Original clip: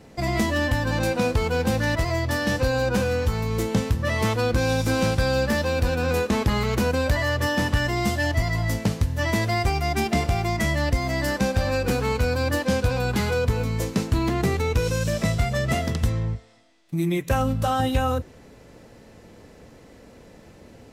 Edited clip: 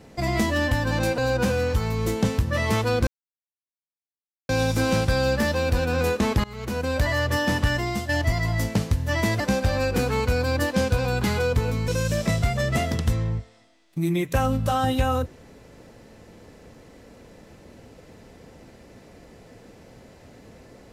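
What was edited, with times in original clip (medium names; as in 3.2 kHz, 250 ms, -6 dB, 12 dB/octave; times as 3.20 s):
1.18–2.70 s: delete
4.59 s: insert silence 1.42 s
6.54–7.17 s: fade in, from -23 dB
7.82–8.19 s: fade out, to -8 dB
9.50–11.32 s: delete
13.80–14.84 s: delete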